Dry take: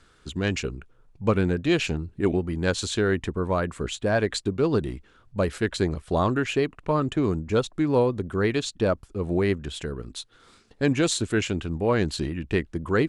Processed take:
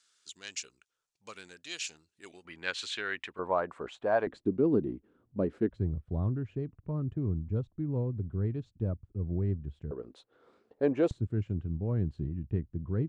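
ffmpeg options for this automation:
-af "asetnsamples=n=441:p=0,asendcmd='2.45 bandpass f 2400;3.39 bandpass f 810;4.27 bandpass f 280;5.69 bandpass f 100;9.91 bandpass f 510;11.11 bandpass f 110',bandpass=f=6500:t=q:w=1.5:csg=0"

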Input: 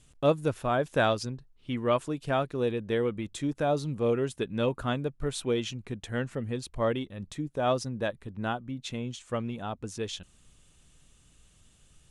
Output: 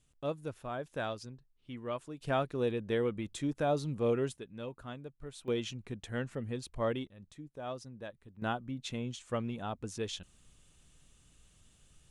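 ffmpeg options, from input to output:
-af "asetnsamples=n=441:p=0,asendcmd='2.21 volume volume -3.5dB;4.37 volume volume -14.5dB;5.48 volume volume -5dB;7.07 volume volume -14dB;8.42 volume volume -3dB',volume=0.251"

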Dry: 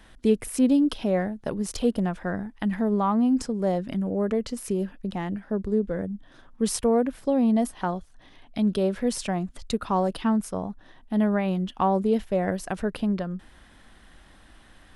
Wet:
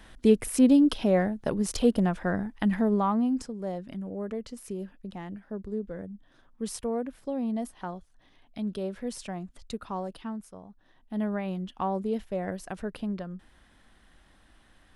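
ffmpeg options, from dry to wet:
-af "volume=3.55,afade=t=out:st=2.69:d=0.83:silence=0.316228,afade=t=out:st=9.79:d=0.85:silence=0.398107,afade=t=in:st=10.64:d=0.6:silence=0.316228"

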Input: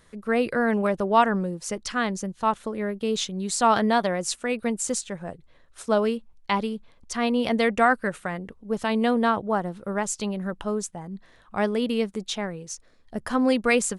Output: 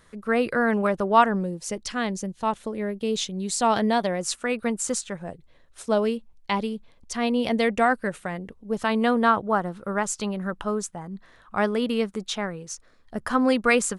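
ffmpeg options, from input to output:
-af "asetnsamples=n=441:p=0,asendcmd='1.26 equalizer g -5;4.21 equalizer g 5;5.17 equalizer g -3.5;8.8 equalizer g 5.5',equalizer=f=1300:t=o:w=0.81:g=3.5"

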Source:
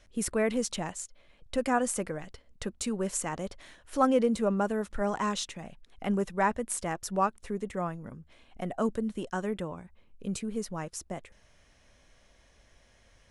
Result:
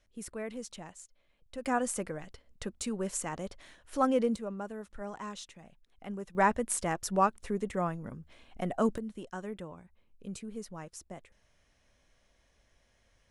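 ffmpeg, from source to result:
-af "asetnsamples=n=441:p=0,asendcmd='1.65 volume volume -3dB;4.36 volume volume -11dB;6.35 volume volume 1dB;8.98 volume volume -7.5dB',volume=0.266"

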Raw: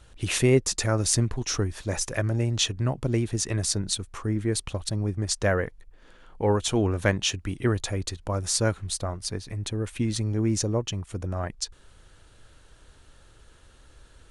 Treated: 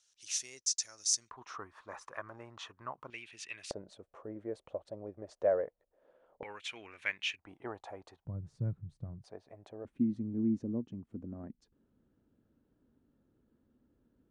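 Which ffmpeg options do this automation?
-af "asetnsamples=n=441:p=0,asendcmd='1.31 bandpass f 1100;3.1 bandpass f 2600;3.71 bandpass f 580;6.43 bandpass f 2300;7.39 bandpass f 800;8.25 bandpass f 140;9.24 bandpass f 660;9.85 bandpass f 240',bandpass=f=5900:t=q:w=4.3:csg=0"

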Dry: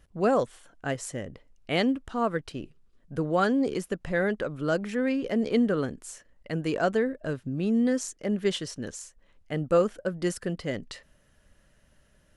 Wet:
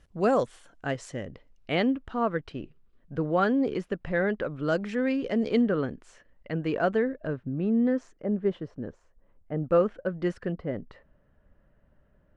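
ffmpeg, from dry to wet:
-af "asetnsamples=n=441:p=0,asendcmd='0.85 lowpass f 5000;1.75 lowpass f 3100;4.63 lowpass f 5400;5.61 lowpass f 2900;7.27 lowpass f 1700;8.22 lowpass f 1000;9.63 lowpass f 2300;10.52 lowpass f 1200',lowpass=8800"

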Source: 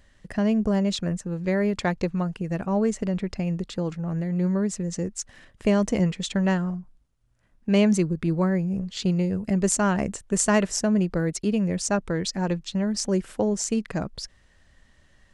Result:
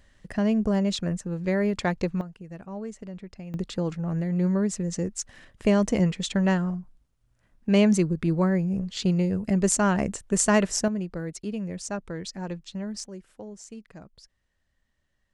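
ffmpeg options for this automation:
-af "asetnsamples=n=441:p=0,asendcmd='2.21 volume volume -12.5dB;3.54 volume volume 0dB;10.88 volume volume -8dB;13.04 volume volume -17dB',volume=0.891"

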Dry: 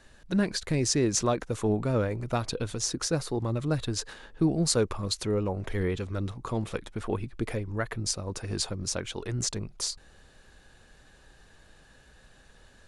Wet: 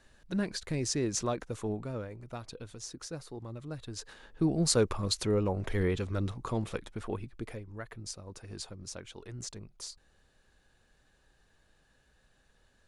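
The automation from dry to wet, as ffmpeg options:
-af "volume=2.11,afade=t=out:st=1.45:d=0.61:silence=0.446684,afade=t=in:st=3.83:d=0.99:silence=0.237137,afade=t=out:st=6.24:d=1.41:silence=0.281838"

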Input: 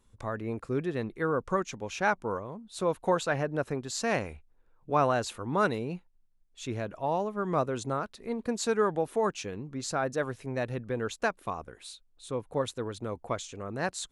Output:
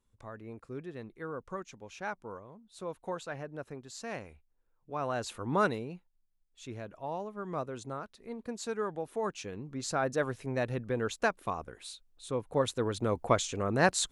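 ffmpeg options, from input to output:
-af "volume=5.31,afade=t=in:st=4.99:d=0.54:silence=0.281838,afade=t=out:st=5.53:d=0.41:silence=0.398107,afade=t=in:st=9.02:d=1.12:silence=0.398107,afade=t=in:st=12.47:d=0.82:silence=0.473151"

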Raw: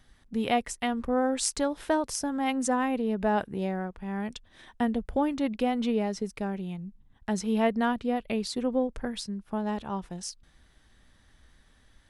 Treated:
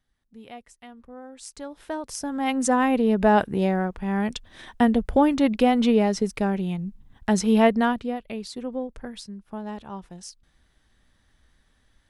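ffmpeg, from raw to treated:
-af "volume=2.51,afade=t=in:st=1.35:d=0.67:silence=0.266073,afade=t=in:st=2.02:d=1.02:silence=0.237137,afade=t=out:st=7.58:d=0.62:silence=0.266073"

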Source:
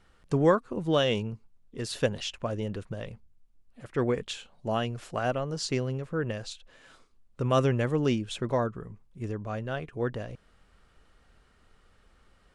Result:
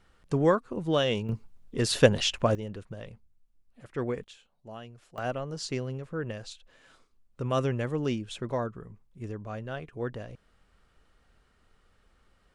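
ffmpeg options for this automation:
-af "asetnsamples=n=441:p=0,asendcmd='1.29 volume volume 7.5dB;2.55 volume volume -4.5dB;4.24 volume volume -14.5dB;5.18 volume volume -3.5dB',volume=0.891"

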